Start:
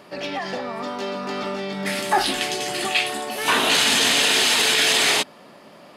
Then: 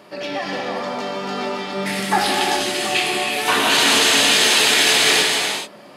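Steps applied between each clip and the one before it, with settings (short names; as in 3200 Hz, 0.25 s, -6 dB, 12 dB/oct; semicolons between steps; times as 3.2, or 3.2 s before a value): HPF 64 Hz; non-linear reverb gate 0.46 s flat, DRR -1 dB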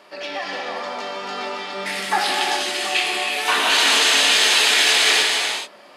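weighting filter A; gain -1.5 dB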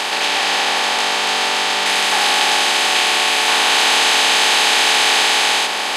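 per-bin compression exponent 0.2; gain -4 dB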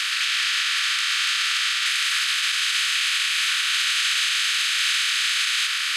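elliptic high-pass 1300 Hz, stop band 40 dB; limiter -11 dBFS, peak gain reduction 9 dB; gain -2 dB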